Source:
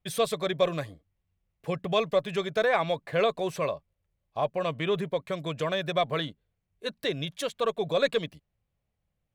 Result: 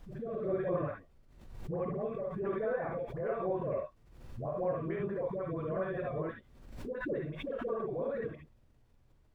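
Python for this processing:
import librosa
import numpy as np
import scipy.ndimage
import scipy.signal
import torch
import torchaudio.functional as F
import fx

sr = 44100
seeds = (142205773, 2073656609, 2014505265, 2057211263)

y = scipy.signal.sosfilt(scipy.signal.butter(4, 1500.0, 'lowpass', fs=sr, output='sos'), x)
y = fx.low_shelf(y, sr, hz=93.0, db=-3.5)
y = fx.level_steps(y, sr, step_db=17)
y = fx.rotary_switch(y, sr, hz=1.1, then_hz=5.5, switch_at_s=3.99)
y = fx.dispersion(y, sr, late='highs', ms=111.0, hz=690.0)
y = fx.dmg_noise_colour(y, sr, seeds[0], colour='brown', level_db=-68.0)
y = fx.rev_gated(y, sr, seeds[1], gate_ms=90, shape='rising', drr_db=0.0)
y = fx.pre_swell(y, sr, db_per_s=59.0)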